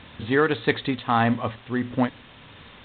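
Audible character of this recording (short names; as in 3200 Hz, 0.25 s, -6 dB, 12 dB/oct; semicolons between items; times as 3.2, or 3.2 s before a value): tremolo triangle 1.6 Hz, depth 45%; a quantiser's noise floor 8-bit, dither triangular; G.726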